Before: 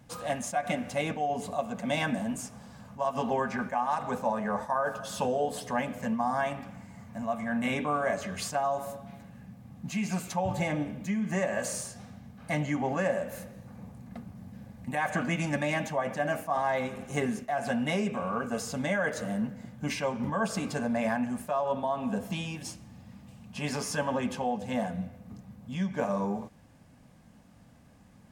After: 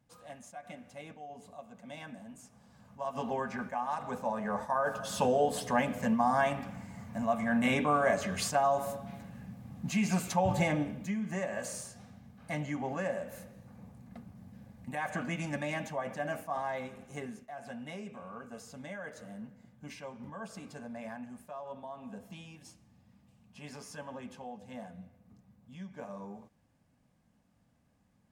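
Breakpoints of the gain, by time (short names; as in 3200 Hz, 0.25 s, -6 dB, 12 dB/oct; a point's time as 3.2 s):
2.33 s -16.5 dB
3.18 s -5.5 dB
4.15 s -5.5 dB
5.31 s +1.5 dB
10.6 s +1.5 dB
11.33 s -6 dB
16.52 s -6 dB
17.5 s -14 dB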